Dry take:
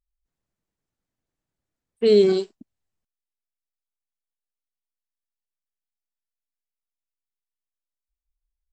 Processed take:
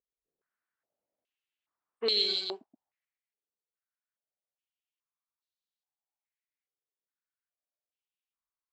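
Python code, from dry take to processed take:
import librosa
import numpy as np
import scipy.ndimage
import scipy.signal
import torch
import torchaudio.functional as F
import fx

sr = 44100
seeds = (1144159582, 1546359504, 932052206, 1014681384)

p1 = x + fx.echo_single(x, sr, ms=126, db=-4.0, dry=0)
p2 = fx.filter_held_bandpass(p1, sr, hz=2.4, low_hz=440.0, high_hz=3900.0)
y = p2 * librosa.db_to_amplitude(7.5)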